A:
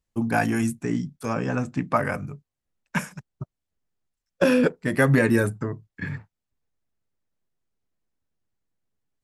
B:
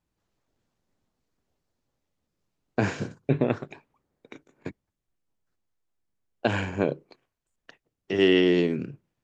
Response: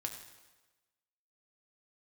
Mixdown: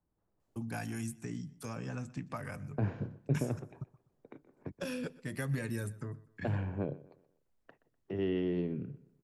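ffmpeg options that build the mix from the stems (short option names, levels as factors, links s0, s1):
-filter_complex "[0:a]acompressor=threshold=0.0126:ratio=1.5,adelay=400,volume=0.708,asplit=2[s0][s1];[s1]volume=0.0841[s2];[1:a]lowpass=1100,volume=0.891,asplit=2[s3][s4];[s4]volume=0.106[s5];[s2][s5]amix=inputs=2:normalize=0,aecho=0:1:124|248|372|496:1|0.29|0.0841|0.0244[s6];[s0][s3][s6]amix=inputs=3:normalize=0,acrossover=split=150|3000[s7][s8][s9];[s8]acompressor=threshold=0.00158:ratio=1.5[s10];[s7][s10][s9]amix=inputs=3:normalize=0"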